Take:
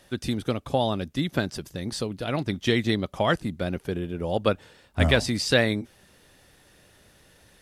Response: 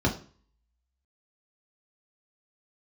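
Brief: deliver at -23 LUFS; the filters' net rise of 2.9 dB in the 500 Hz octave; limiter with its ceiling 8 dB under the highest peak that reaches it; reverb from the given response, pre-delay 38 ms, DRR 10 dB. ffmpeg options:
-filter_complex "[0:a]equalizer=f=500:t=o:g=3.5,alimiter=limit=-13dB:level=0:latency=1,asplit=2[a][b];[1:a]atrim=start_sample=2205,adelay=38[c];[b][c]afir=irnorm=-1:irlink=0,volume=-22dB[d];[a][d]amix=inputs=2:normalize=0,volume=2.5dB"

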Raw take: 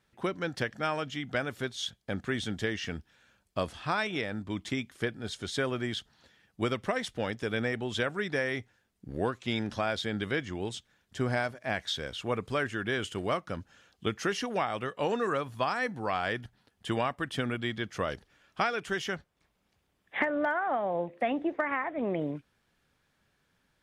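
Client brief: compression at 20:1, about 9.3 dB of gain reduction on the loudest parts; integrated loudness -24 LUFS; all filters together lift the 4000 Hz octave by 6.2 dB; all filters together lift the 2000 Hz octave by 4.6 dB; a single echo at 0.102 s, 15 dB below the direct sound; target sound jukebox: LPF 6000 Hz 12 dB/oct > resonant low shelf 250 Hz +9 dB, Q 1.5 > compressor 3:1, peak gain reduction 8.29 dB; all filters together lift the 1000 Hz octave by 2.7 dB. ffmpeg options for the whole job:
-af "equalizer=f=1k:t=o:g=3,equalizer=f=2k:t=o:g=3.5,equalizer=f=4k:t=o:g=7,acompressor=threshold=-30dB:ratio=20,lowpass=6k,lowshelf=f=250:t=q:w=1.5:g=9,aecho=1:1:102:0.178,acompressor=threshold=-33dB:ratio=3,volume=13.5dB"

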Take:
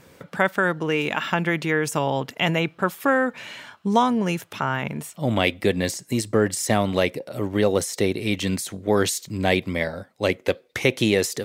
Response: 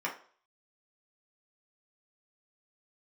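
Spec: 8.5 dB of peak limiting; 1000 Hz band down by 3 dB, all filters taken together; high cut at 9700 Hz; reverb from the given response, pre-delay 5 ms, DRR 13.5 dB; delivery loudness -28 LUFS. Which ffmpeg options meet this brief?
-filter_complex "[0:a]lowpass=9.7k,equalizer=f=1k:t=o:g=-4,alimiter=limit=-13dB:level=0:latency=1,asplit=2[a][b];[1:a]atrim=start_sample=2205,adelay=5[c];[b][c]afir=irnorm=-1:irlink=0,volume=-20dB[d];[a][d]amix=inputs=2:normalize=0,volume=-2dB"

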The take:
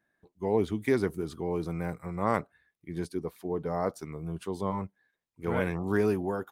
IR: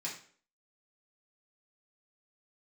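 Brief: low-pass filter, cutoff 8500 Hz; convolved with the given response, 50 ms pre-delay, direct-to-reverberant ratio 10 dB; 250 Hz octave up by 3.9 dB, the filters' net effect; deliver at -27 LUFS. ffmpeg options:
-filter_complex "[0:a]lowpass=8.5k,equalizer=f=250:t=o:g=5.5,asplit=2[a][b];[1:a]atrim=start_sample=2205,adelay=50[c];[b][c]afir=irnorm=-1:irlink=0,volume=-11.5dB[d];[a][d]amix=inputs=2:normalize=0,volume=2dB"

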